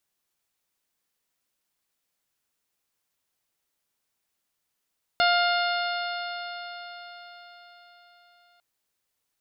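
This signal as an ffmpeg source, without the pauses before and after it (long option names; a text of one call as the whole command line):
ffmpeg -f lavfi -i "aevalsrc='0.0891*pow(10,-3*t/4.84)*sin(2*PI*700.52*t)+0.0794*pow(10,-3*t/4.84)*sin(2*PI*1404.19*t)+0.0316*pow(10,-3*t/4.84)*sin(2*PI*2114.13*t)+0.0335*pow(10,-3*t/4.84)*sin(2*PI*2833.4*t)+0.0355*pow(10,-3*t/4.84)*sin(2*PI*3565.02*t)+0.0422*pow(10,-3*t/4.84)*sin(2*PI*4311.91*t)+0.0141*pow(10,-3*t/4.84)*sin(2*PI*5076.88*t)':duration=3.4:sample_rate=44100" out.wav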